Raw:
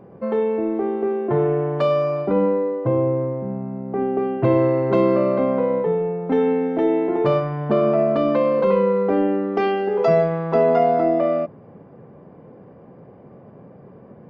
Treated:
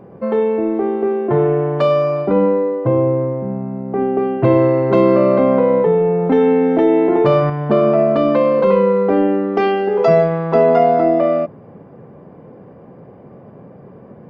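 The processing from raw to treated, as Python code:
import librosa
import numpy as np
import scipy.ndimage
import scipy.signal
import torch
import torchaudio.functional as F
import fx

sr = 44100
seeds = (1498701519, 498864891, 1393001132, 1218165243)

y = fx.env_flatten(x, sr, amount_pct=50, at=(4.97, 7.5))
y = y * librosa.db_to_amplitude(4.5)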